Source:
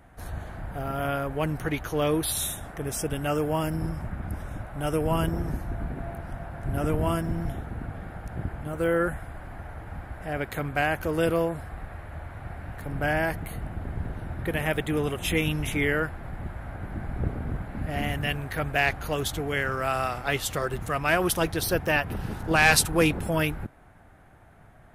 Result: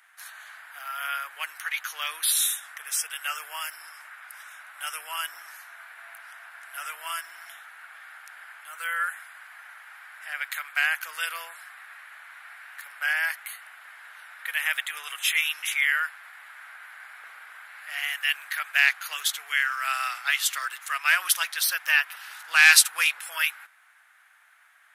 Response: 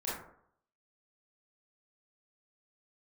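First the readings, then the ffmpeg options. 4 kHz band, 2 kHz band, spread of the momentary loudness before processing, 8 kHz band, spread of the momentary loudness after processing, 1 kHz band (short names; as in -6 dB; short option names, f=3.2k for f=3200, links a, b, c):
+6.0 dB, +5.5 dB, 14 LU, +6.0 dB, 22 LU, -3.5 dB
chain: -af "highpass=f=1.4k:w=0.5412,highpass=f=1.4k:w=1.3066,volume=6dB"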